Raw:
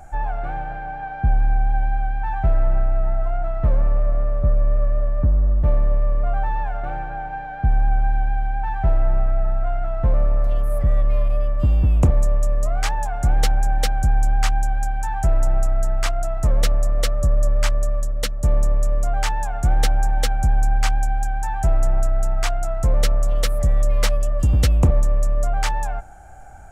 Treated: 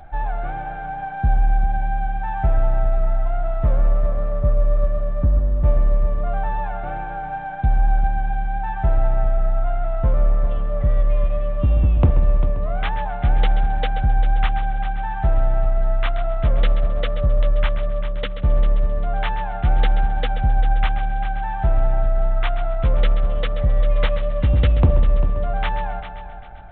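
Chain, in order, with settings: multi-head delay 132 ms, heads first and third, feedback 45%, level -12 dB; G.726 40 kbps 8 kHz

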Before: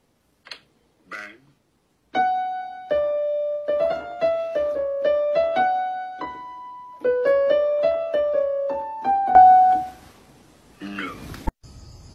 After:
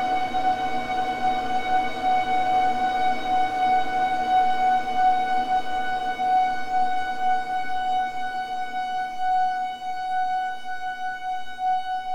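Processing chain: partial rectifier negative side -12 dB; Paulstretch 44×, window 0.50 s, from 2.16 s; trim +1.5 dB

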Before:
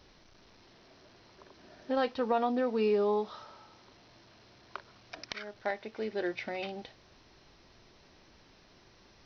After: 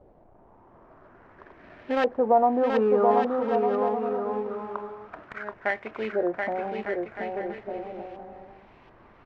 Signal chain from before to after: dead-time distortion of 0.12 ms; LFO low-pass saw up 0.49 Hz 610–2700 Hz; bouncing-ball echo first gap 730 ms, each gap 0.65×, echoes 5; trim +4 dB

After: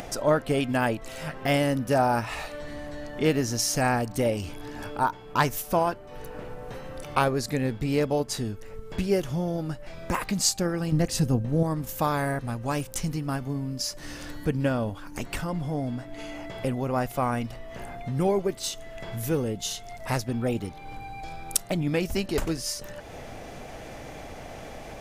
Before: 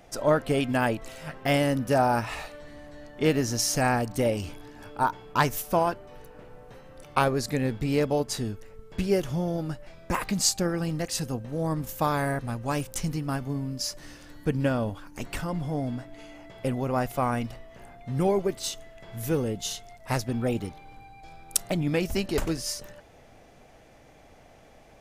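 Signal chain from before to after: 10.92–11.63 s: bass shelf 390 Hz +10.5 dB; upward compressor, threshold -27 dBFS

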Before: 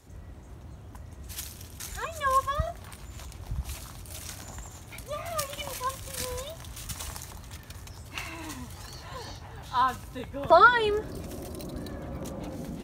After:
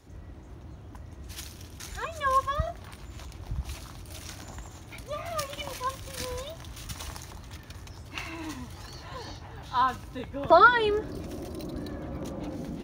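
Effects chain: graphic EQ with 31 bands 315 Hz +5 dB, 8 kHz -9 dB, 12.5 kHz -10 dB

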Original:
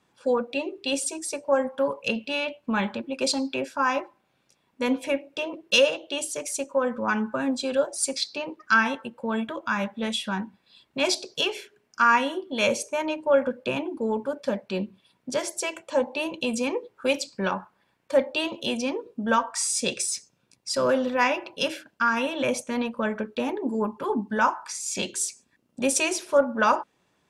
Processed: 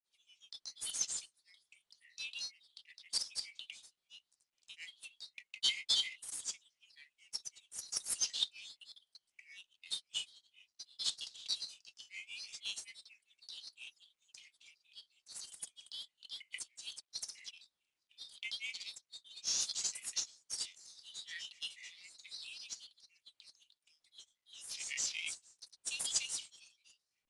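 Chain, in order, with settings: rippled Chebyshev high-pass 2.8 kHz, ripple 6 dB; granulator 192 ms, grains 12 per s, spray 252 ms, pitch spread up and down by 7 st; trim -3 dB; IMA ADPCM 88 kbps 22.05 kHz

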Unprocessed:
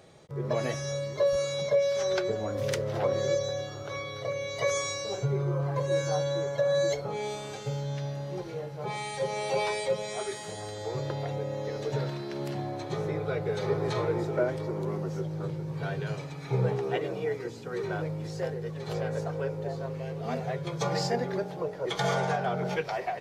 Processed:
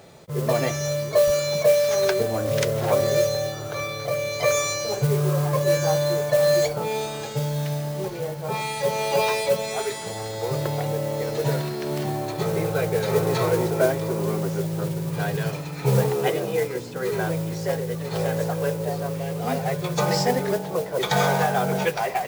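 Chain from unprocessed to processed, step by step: speed mistake 24 fps film run at 25 fps; modulation noise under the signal 17 dB; trim +7 dB

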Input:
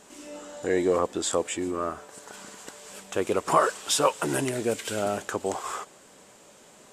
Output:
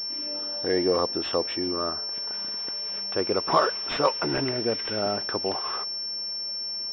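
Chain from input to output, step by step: class-D stage that switches slowly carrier 5.4 kHz

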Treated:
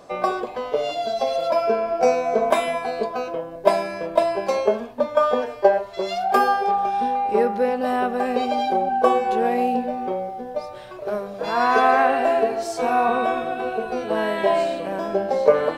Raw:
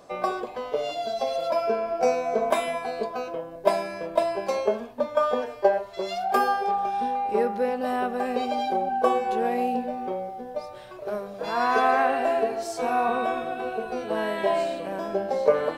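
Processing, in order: treble shelf 8.1 kHz -4 dB; trim +4.5 dB

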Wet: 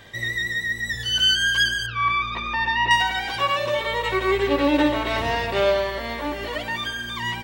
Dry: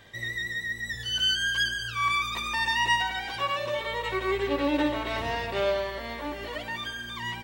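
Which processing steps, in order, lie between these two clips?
1.86–2.91 s: distance through air 280 m; trim +6.5 dB

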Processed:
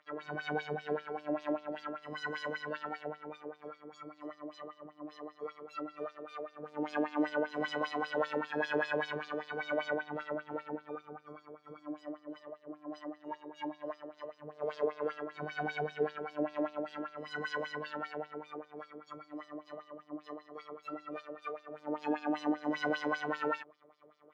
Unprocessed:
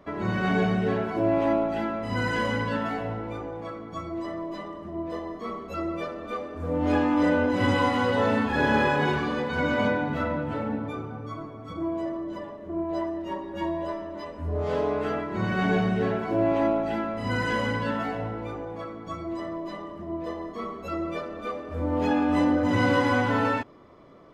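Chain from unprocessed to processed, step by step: robot voice 150 Hz; LFO band-pass sine 5.1 Hz 390–5300 Hz

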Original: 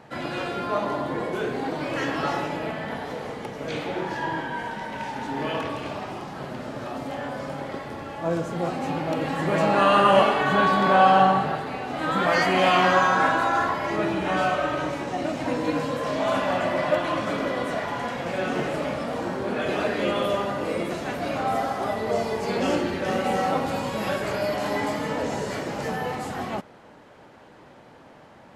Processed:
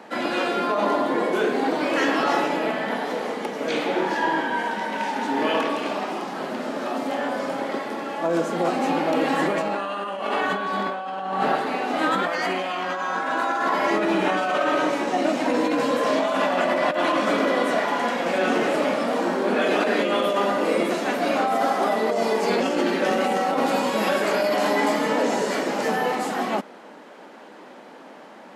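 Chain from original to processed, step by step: steep high-pass 200 Hz 36 dB/octave; compressor with a negative ratio -26 dBFS, ratio -1; trim +4 dB

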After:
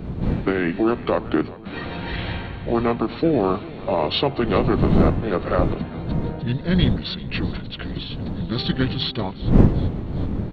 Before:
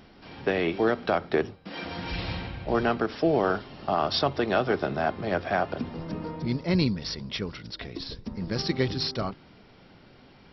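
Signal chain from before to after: wind noise 230 Hz -29 dBFS; feedback delay 386 ms, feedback 56%, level -19 dB; formant shift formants -4 st; trim +4.5 dB

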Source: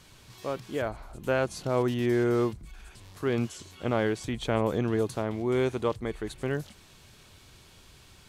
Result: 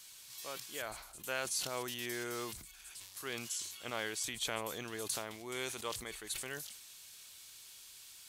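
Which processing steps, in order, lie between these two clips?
pre-emphasis filter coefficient 0.97; decay stretcher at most 61 dB/s; trim +6.5 dB

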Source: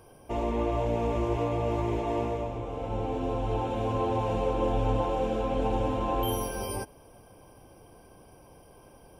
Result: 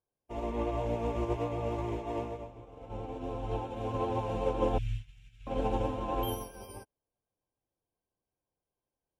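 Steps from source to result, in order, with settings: 4.78–5.47 s: elliptic band-stop 130–2000 Hz, stop band 40 dB; vibrato 7.7 Hz 24 cents; upward expansion 2.5:1, over -50 dBFS

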